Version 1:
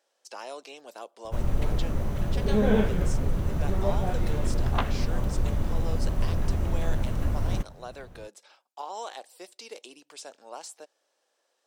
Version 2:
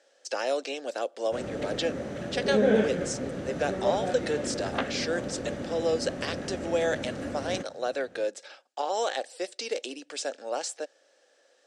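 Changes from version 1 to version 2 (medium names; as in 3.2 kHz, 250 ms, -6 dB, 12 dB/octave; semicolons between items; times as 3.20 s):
speech +9.0 dB; master: add cabinet simulation 220–8400 Hz, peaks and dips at 270 Hz +6 dB, 530 Hz +7 dB, 1 kHz -10 dB, 1.7 kHz +5 dB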